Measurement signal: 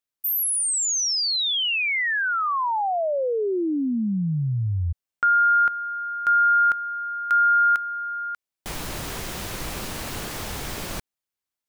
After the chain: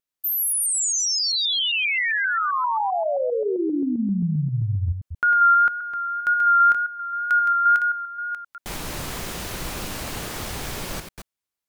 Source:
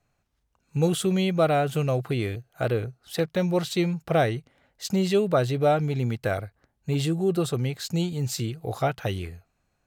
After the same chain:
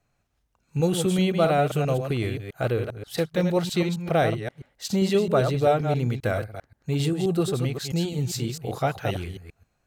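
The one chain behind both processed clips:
delay that plays each chunk backwards 132 ms, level −6.5 dB
tape wow and flutter 24 cents

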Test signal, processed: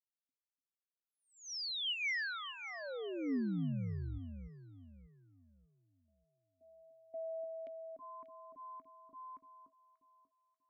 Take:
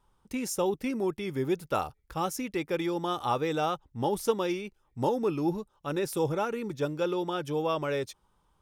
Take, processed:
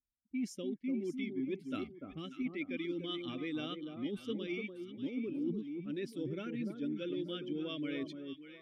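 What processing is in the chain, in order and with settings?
spectral dynamics exaggerated over time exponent 1.5
formant filter i
low-shelf EQ 67 Hz +8.5 dB
reversed playback
downward compressor 5 to 1, threshold −49 dBFS
reversed playback
low-pass that shuts in the quiet parts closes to 320 Hz, open at −51.5 dBFS
on a send: delay that swaps between a low-pass and a high-pass 294 ms, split 1,200 Hz, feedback 56%, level −5.5 dB
on the sum: level +13 dB

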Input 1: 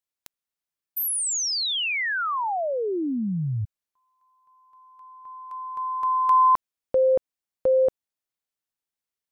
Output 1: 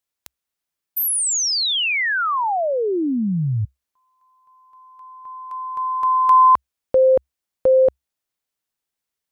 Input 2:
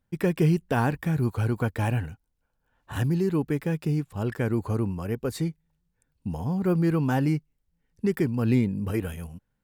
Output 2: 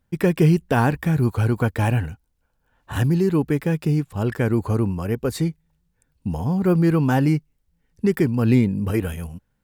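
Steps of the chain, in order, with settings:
parametric band 66 Hz +4 dB 0.33 octaves
level +5.5 dB

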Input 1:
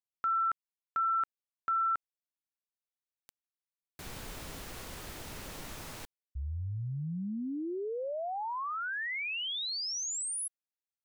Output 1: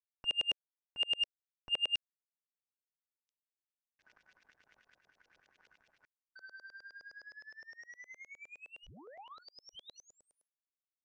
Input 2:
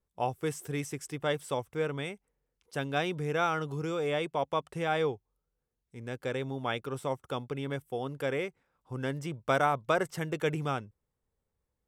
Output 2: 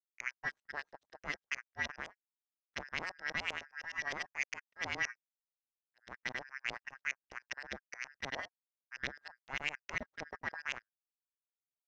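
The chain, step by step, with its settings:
band-splitting scrambler in four parts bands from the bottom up 2143
brickwall limiter −22.5 dBFS
power curve on the samples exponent 3
auto-filter low-pass saw up 9.7 Hz 530–3,900 Hz
parametric band 6,000 Hz +11.5 dB 0.67 octaves
level −1.5 dB

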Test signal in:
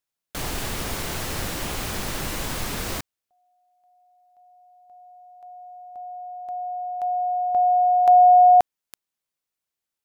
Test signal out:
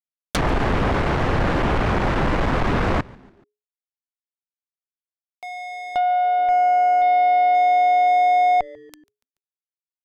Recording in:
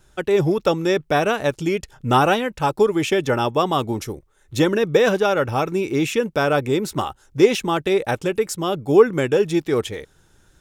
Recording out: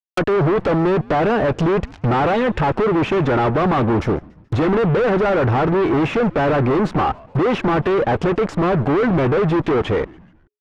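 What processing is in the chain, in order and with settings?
fuzz pedal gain 37 dB, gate −42 dBFS
treble cut that deepens with the level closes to 1,600 Hz, closed at −14.5 dBFS
echo with shifted repeats 143 ms, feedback 51%, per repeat −140 Hz, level −23.5 dB
level −1.5 dB

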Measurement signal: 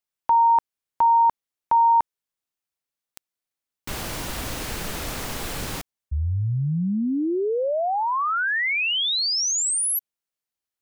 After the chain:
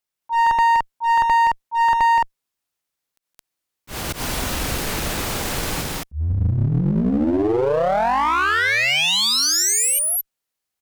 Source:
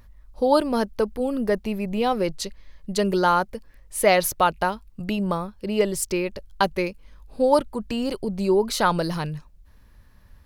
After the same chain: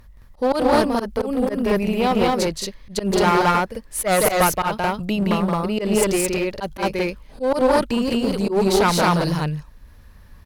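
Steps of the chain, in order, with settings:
loudspeakers that aren't time-aligned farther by 59 metres −5 dB, 75 metres −1 dB
volume swells 105 ms
asymmetric clip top −23 dBFS
level +3.5 dB

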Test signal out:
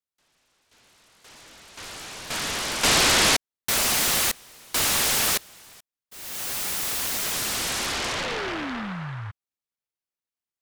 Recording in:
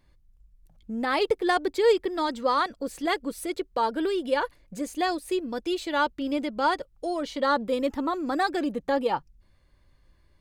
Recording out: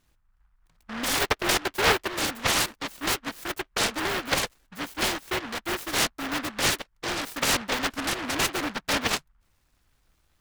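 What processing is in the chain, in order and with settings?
low-pass filter 9,400 Hz 12 dB per octave
low-shelf EQ 220 Hz −8 dB
short delay modulated by noise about 1,200 Hz, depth 0.49 ms

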